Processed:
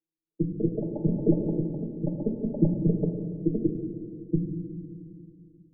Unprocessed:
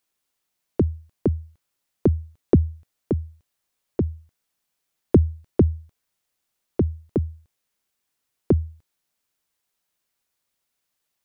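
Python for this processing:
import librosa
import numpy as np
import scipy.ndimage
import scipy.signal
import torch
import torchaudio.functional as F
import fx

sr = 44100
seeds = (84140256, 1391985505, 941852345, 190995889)

y = fx.spec_expand(x, sr, power=3.1)
y = scipy.signal.sosfilt(scipy.signal.butter(12, 500.0, 'lowpass', fs=sr, output='sos'), y)
y = fx.stretch_grains(y, sr, factor=0.51, grain_ms=23.0)
y = fx.robotise(y, sr, hz=161.0)
y = fx.rev_fdn(y, sr, rt60_s=2.9, lf_ratio=1.0, hf_ratio=0.9, size_ms=52.0, drr_db=0.5)
y = fx.echo_pitch(y, sr, ms=300, semitones=5, count=2, db_per_echo=-6.0)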